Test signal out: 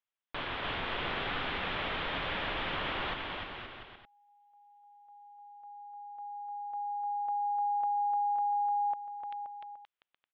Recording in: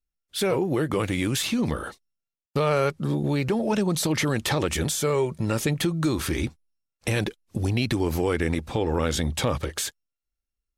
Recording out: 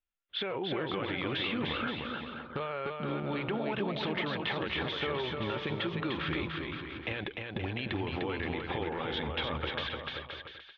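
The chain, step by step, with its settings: elliptic low-pass 3400 Hz, stop band 60 dB; low shelf 400 Hz -12 dB; limiter -23 dBFS; compressor 6:1, threshold -34 dBFS; on a send: bouncing-ball echo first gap 0.3 s, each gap 0.75×, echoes 5; on the sum: gain +2.5 dB

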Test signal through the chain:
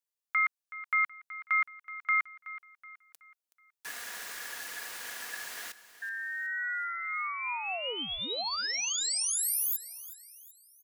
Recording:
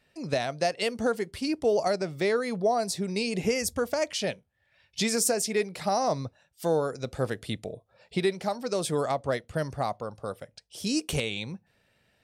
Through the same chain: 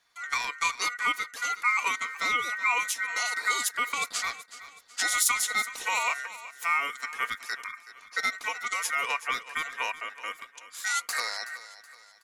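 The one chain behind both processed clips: ring modulator 1700 Hz; tone controls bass -13 dB, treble +5 dB; comb 4.2 ms, depth 35%; feedback echo 0.374 s, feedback 42%, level -15.5 dB

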